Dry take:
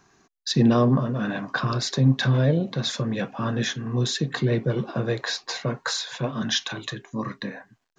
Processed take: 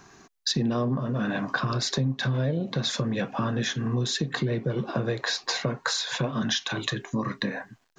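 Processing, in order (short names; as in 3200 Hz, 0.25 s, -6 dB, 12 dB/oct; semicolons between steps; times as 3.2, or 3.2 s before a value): compressor 6:1, threshold -32 dBFS, peak gain reduction 17 dB; gain +7.5 dB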